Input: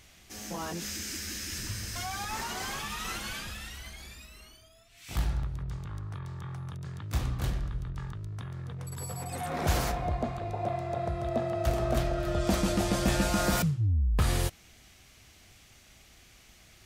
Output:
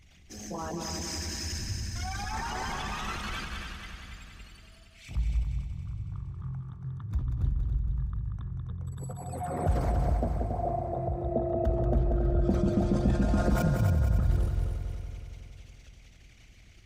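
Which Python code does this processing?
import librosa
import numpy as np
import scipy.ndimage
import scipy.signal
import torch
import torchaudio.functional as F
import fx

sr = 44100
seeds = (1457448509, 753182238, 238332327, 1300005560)

y = fx.envelope_sharpen(x, sr, power=2.0)
y = fx.echo_heads(y, sr, ms=93, heads='second and third', feedback_pct=59, wet_db=-6.5)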